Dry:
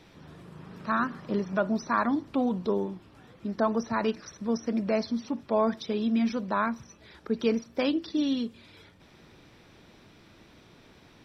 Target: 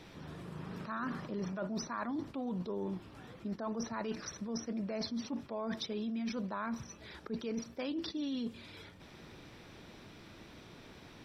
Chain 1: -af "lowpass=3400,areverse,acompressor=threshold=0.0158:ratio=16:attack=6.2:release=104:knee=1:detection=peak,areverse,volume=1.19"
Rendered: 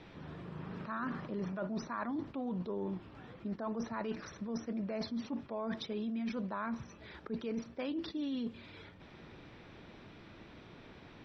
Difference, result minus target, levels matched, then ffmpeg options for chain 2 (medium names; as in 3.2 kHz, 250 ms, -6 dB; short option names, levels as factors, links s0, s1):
4 kHz band -4.0 dB
-af "areverse,acompressor=threshold=0.0158:ratio=16:attack=6.2:release=104:knee=1:detection=peak,areverse,volume=1.19"